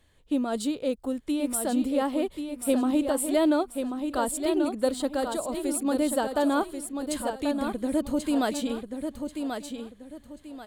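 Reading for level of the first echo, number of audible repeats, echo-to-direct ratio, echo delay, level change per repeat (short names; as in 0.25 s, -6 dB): -6.5 dB, 3, -6.0 dB, 1.086 s, -10.5 dB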